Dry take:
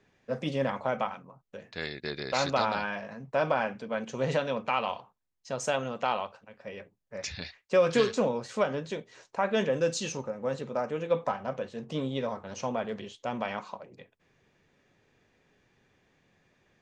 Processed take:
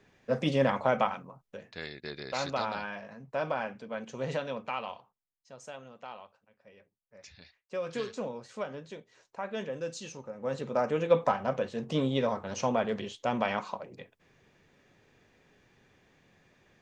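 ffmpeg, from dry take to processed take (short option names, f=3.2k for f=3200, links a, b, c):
-af "volume=22.5dB,afade=t=out:st=1.21:d=0.61:silence=0.375837,afade=t=out:st=4.52:d=0.99:silence=0.298538,afade=t=in:st=7.41:d=0.83:silence=0.473151,afade=t=in:st=10.23:d=0.65:silence=0.237137"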